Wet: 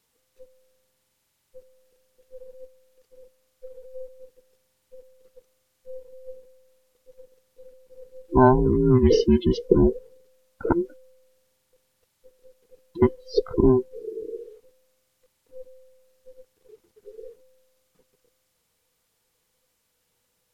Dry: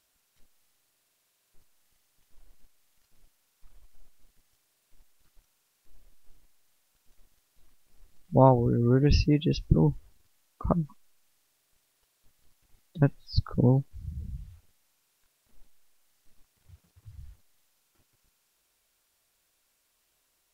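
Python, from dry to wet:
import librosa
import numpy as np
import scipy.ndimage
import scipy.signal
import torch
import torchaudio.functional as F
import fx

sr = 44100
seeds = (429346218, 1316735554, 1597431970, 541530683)

y = fx.band_invert(x, sr, width_hz=500)
y = fx.low_shelf(y, sr, hz=340.0, db=8.0)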